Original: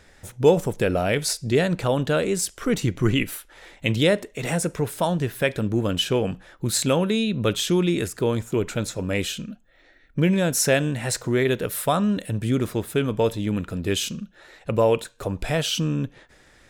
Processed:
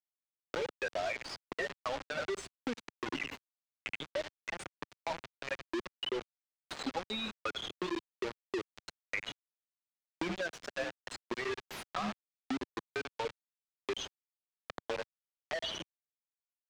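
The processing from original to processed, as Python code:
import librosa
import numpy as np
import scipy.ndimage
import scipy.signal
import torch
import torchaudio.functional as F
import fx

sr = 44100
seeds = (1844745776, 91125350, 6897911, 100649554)

y = fx.bin_expand(x, sr, power=3.0)
y = scipy.signal.sosfilt(scipy.signal.butter(4, 370.0, 'highpass', fs=sr, output='sos'), y)
y = fx.echo_bbd(y, sr, ms=74, stages=2048, feedback_pct=37, wet_db=-16.0)
y = fx.over_compress(y, sr, threshold_db=-38.0, ratio=-1.0)
y = fx.quant_dither(y, sr, seeds[0], bits=6, dither='none')
y = fx.air_absorb(y, sr, metres=140.0)
y = fx.band_squash(y, sr, depth_pct=70)
y = F.gain(torch.from_numpy(y), 1.0).numpy()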